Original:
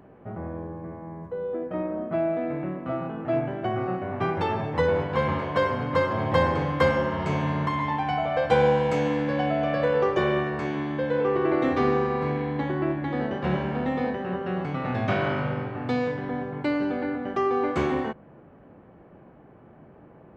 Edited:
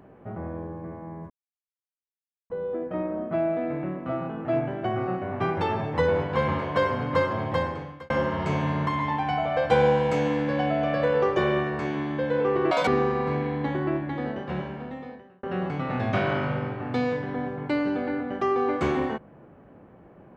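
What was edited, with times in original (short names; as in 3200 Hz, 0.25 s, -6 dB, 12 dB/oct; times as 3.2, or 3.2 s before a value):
1.3 insert silence 1.20 s
6.01–6.9 fade out
11.51–11.82 speed 192%
12.76–14.38 fade out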